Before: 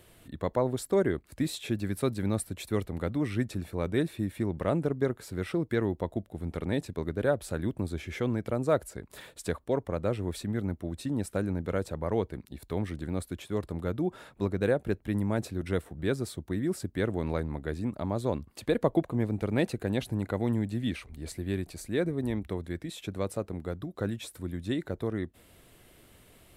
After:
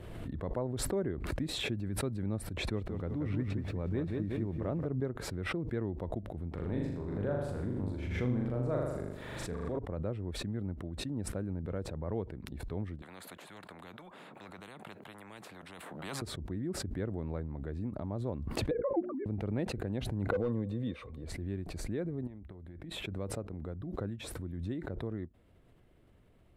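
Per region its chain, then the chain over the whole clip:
2.57–4.86 air absorption 55 m + lo-fi delay 0.181 s, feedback 35%, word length 9-bit, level -5.5 dB
6.51–9.79 transient shaper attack -5 dB, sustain +2 dB + flutter echo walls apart 6.9 m, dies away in 0.83 s + sustainer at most 36 dB/s
13.02–16.22 Chebyshev high-pass 180 Hz, order 4 + bell 5500 Hz -8.5 dB 0.38 oct + spectral compressor 10:1
18.71–19.26 sine-wave speech + LPF 1900 Hz + notches 60/120/180/240/300/360/420 Hz
20.31–21.24 HPF 79 Hz + small resonant body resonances 500/1100/3600 Hz, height 18 dB, ringing for 65 ms + hard clip -18.5 dBFS
22.27–23.07 bell 5900 Hz -8.5 dB 0.67 oct + notch 470 Hz, Q 11 + compressor 10:1, threshold -37 dBFS
whole clip: LPF 1200 Hz 6 dB/oct; low shelf 190 Hz +5.5 dB; backwards sustainer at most 29 dB/s; gain -9 dB

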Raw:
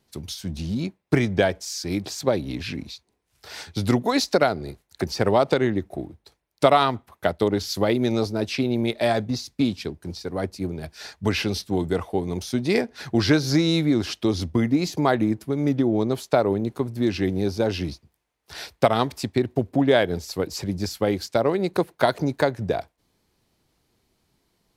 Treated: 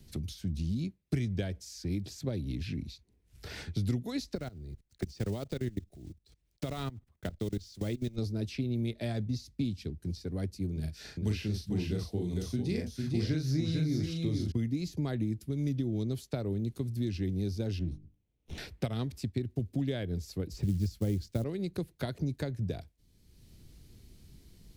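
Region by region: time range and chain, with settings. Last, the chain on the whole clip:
4.35–8.18 block floating point 5-bit + bell 12000 Hz -13 dB 0.27 oct + level quantiser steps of 22 dB
10.72–14.52 doubler 38 ms -4.5 dB + echo 0.45 s -5 dB
17.79–18.58 minimum comb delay 0.32 ms + LPF 1100 Hz 6 dB/oct + notches 50/100/150/200/250/300/350/400/450 Hz
20.53–21.44 tilt -2.5 dB/oct + companded quantiser 6-bit
whole clip: passive tone stack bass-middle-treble 10-0-1; three-band squash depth 70%; gain +7.5 dB

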